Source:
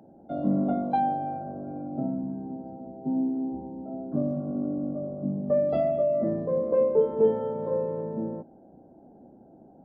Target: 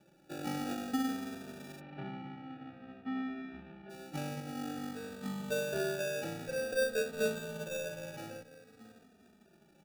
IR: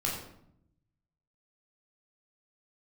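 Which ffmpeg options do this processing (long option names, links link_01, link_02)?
-filter_complex "[0:a]equalizer=frequency=360:width_type=o:width=0.77:gain=-4.5,aecho=1:1:630:0.188,acrusher=samples=42:mix=1:aa=0.000001,asplit=3[link_01][link_02][link_03];[link_01]afade=type=out:start_time=1.79:duration=0.02[link_04];[link_02]lowpass=frequency=2900:width=0.5412,lowpass=frequency=2900:width=1.3066,afade=type=in:start_time=1.79:duration=0.02,afade=type=out:start_time=3.89:duration=0.02[link_05];[link_03]afade=type=in:start_time=3.89:duration=0.02[link_06];[link_04][link_05][link_06]amix=inputs=3:normalize=0,asplit=2[link_07][link_08];[link_08]adelay=3,afreqshift=-0.51[link_09];[link_07][link_09]amix=inputs=2:normalize=1,volume=-7dB"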